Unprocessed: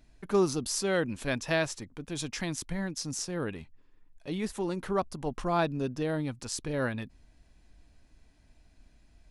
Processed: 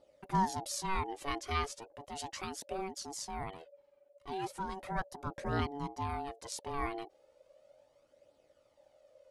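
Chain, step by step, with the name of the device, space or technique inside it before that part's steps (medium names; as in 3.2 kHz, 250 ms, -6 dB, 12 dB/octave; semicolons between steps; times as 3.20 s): alien voice (ring modulator 570 Hz; flange 0.36 Hz, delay 0.2 ms, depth 2.7 ms, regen +33%)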